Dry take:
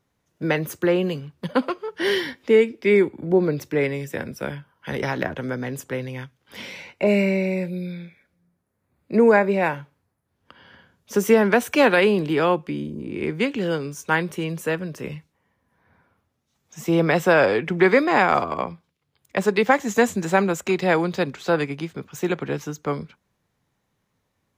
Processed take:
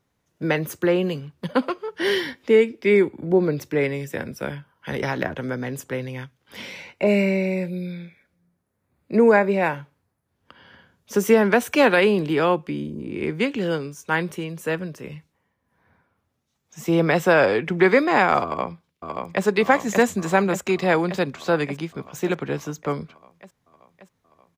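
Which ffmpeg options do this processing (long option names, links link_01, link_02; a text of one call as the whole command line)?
ffmpeg -i in.wav -filter_complex "[0:a]asettb=1/sr,asplit=3[link_01][link_02][link_03];[link_01]atrim=end=13.734[link_04];[link_02]atrim=start=13.73:end=16.86,asetpts=PTS-STARTPTS,afade=type=in:duration=0.004:curve=qsin,afade=type=out:start_time=3.126:duration=0.004:curve=qsin,tremolo=f=1.9:d=0.41[link_05];[link_03]atrim=start=16.856[link_06];[link_04][link_05]acrossfade=duration=0.004:curve1=hsin:curve2=qsin[link_07];[link_07][link_06]acrossfade=duration=0.004:curve1=qsin:curve2=hsin,asplit=2[link_08][link_09];[link_09]afade=type=in:start_time=18.44:duration=0.01,afade=type=out:start_time=19.44:duration=0.01,aecho=0:1:580|1160|1740|2320|2900|3480|4060|4640|5220|5800|6380|6960:0.630957|0.44167|0.309169|0.216418|0.151493|0.106045|0.0742315|0.0519621|0.0363734|0.0254614|0.017823|0.0124761[link_10];[link_08][link_10]amix=inputs=2:normalize=0" out.wav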